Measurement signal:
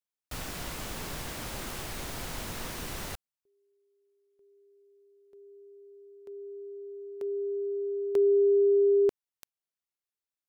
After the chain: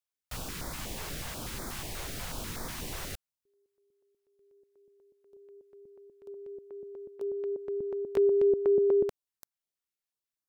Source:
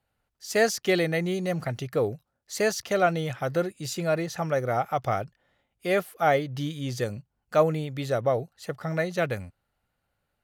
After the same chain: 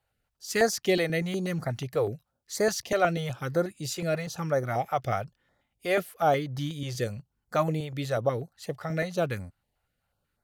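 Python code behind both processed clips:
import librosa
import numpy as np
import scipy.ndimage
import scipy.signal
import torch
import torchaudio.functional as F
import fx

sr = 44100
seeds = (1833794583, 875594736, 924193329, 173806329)

y = fx.filter_held_notch(x, sr, hz=8.2, low_hz=230.0, high_hz=2800.0)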